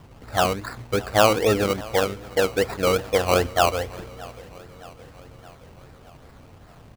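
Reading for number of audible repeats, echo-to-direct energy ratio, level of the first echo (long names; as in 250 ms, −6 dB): 4, −19.0 dB, −21.0 dB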